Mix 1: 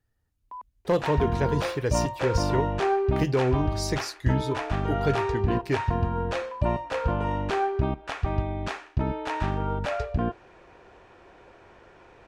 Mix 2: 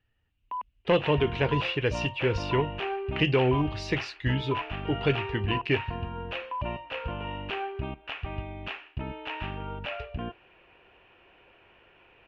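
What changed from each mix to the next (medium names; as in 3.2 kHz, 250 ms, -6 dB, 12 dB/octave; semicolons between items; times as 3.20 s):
first sound +5.0 dB; second sound -9.0 dB; master: add resonant low-pass 2.8 kHz, resonance Q 6.6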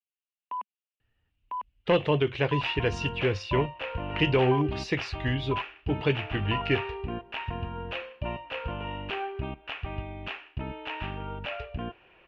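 speech: entry +1.00 s; second sound: entry +1.60 s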